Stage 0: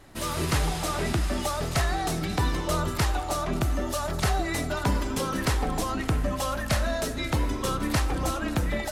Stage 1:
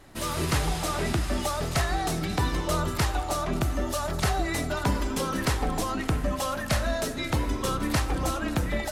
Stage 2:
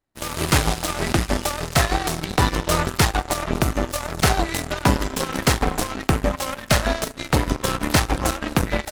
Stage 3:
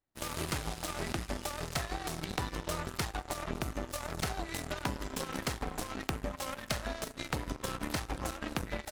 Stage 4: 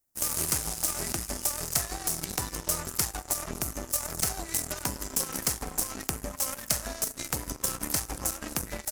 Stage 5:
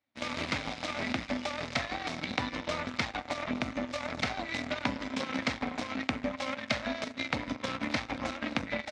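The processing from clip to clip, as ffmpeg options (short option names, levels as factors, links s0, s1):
-af "bandreject=f=54.48:t=h:w=4,bandreject=f=108.96:t=h:w=4"
-af "aeval=exprs='0.251*(cos(1*acos(clip(val(0)/0.251,-1,1)))-cos(1*PI/2))+0.0355*(cos(7*acos(clip(val(0)/0.251,-1,1)))-cos(7*PI/2))':c=same,volume=2.66"
-af "acompressor=threshold=0.0708:ratio=6,volume=0.398"
-af "aexciter=amount=4.8:drive=6.5:freq=5200"
-af "highpass=110,equalizer=f=160:t=q:w=4:g=-6,equalizer=f=250:t=q:w=4:g=10,equalizer=f=380:t=q:w=4:g=-10,equalizer=f=580:t=q:w=4:g=4,equalizer=f=2200:t=q:w=4:g=9,equalizer=f=3700:t=q:w=4:g=7,lowpass=f=3800:w=0.5412,lowpass=f=3800:w=1.3066,volume=1.26"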